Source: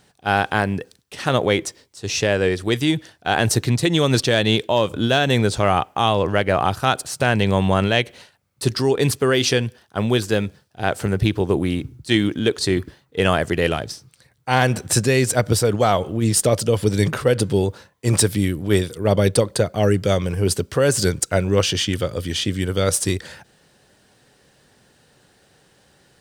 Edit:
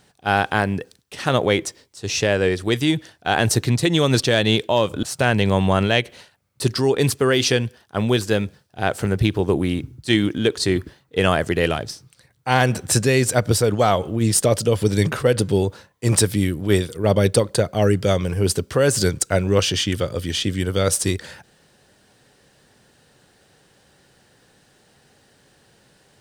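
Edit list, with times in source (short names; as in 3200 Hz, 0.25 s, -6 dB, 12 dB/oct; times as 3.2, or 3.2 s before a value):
5.03–7.04 cut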